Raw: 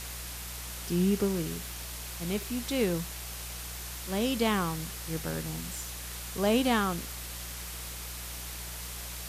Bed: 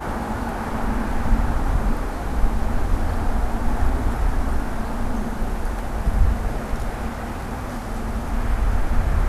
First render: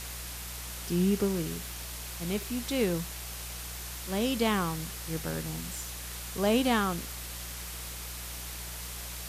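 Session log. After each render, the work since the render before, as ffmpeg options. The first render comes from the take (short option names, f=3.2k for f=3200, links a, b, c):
-af anull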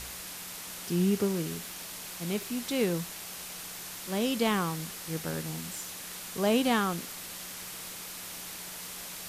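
-af "bandreject=f=60:t=h:w=4,bandreject=f=120:t=h:w=4"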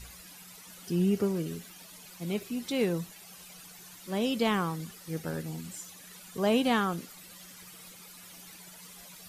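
-af "afftdn=nr=13:nf=-42"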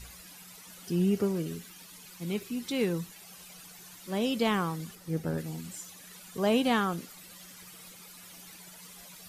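-filter_complex "[0:a]asettb=1/sr,asplit=3[a][b][c];[a]atrim=end=1.534[d];[b]atrim=start=1.53:end=3.14,asetpts=PTS-STARTPTS,afade=t=in:d=0.004:c=qsin,afade=t=out:st=1.606:d=0.004:c=qsin,equalizer=f=650:t=o:w=0.42:g=-7.5[e];[c]atrim=start=3.136[f];[d][e]acrossfade=d=0.004:c1=hsin:c2=qsin[g];[g][f]acrossfade=d=0.004:c1=qsin:c2=hsin,asettb=1/sr,asplit=3[h][i][j];[h]atrim=end=4.954[k];[i]atrim=start=4.95:end=5.38,asetpts=PTS-STARTPTS,afade=t=in:d=0.004:c=qsin,afade=t=out:st=0.426:d=0.004:c=qsin,tiltshelf=f=840:g=4.5[l];[j]atrim=start=5.376[m];[k][l]acrossfade=d=0.004:c1=hsin:c2=qsin[n];[n][m]acrossfade=d=0.004:c1=qsin:c2=hsin"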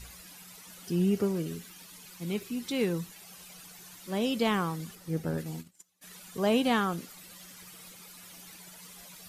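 -filter_complex "[0:a]asplit=3[a][b][c];[a]afade=t=out:st=5.43:d=0.02[d];[b]agate=range=-27dB:threshold=-40dB:ratio=16:release=100:detection=peak,afade=t=in:st=5.43:d=0.02,afade=t=out:st=6.01:d=0.02[e];[c]afade=t=in:st=6.01:d=0.02[f];[d][e][f]amix=inputs=3:normalize=0"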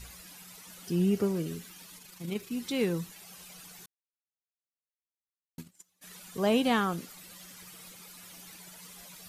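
-filter_complex "[0:a]asettb=1/sr,asplit=3[a][b][c];[a]atrim=end=1.984[d];[b]atrim=start=1.98:end=2.51,asetpts=PTS-STARTPTS,afade=t=in:d=0.004:c=qsin,afade=t=out:st=0.526:d=0.004:c=qsin,tremolo=f=26:d=0.462[e];[c]atrim=start=2.506[f];[d][e]acrossfade=d=0.004:c1=hsin:c2=qsin[g];[g][f]acrossfade=d=0.004:c1=qsin:c2=hsin,asplit=3[h][i][j];[h]atrim=end=3.86,asetpts=PTS-STARTPTS,afade=t=out:st=3.856:d=0.004:c=hsin[k];[i]atrim=start=3.86:end=5.58,asetpts=PTS-STARTPTS,volume=0[l];[j]atrim=start=5.58,asetpts=PTS-STARTPTS,afade=t=in:d=0.004:c=hsin[m];[k][l][m]concat=n=3:v=0:a=1"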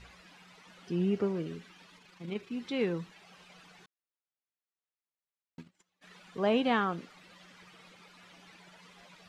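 -af "lowpass=3k,lowshelf=f=160:g=-9"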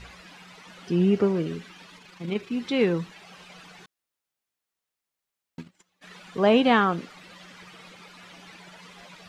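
-af "volume=8.5dB"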